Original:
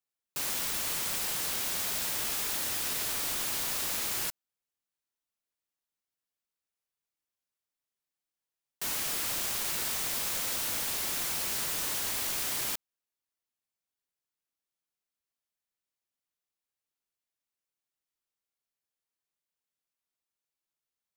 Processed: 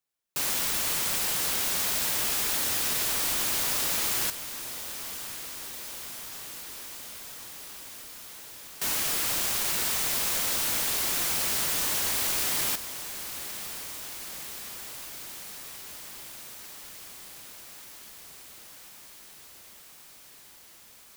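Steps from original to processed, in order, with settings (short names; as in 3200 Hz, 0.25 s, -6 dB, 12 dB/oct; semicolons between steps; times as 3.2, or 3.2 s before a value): diffused feedback echo 1.062 s, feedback 78%, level -12.5 dB; gain +4.5 dB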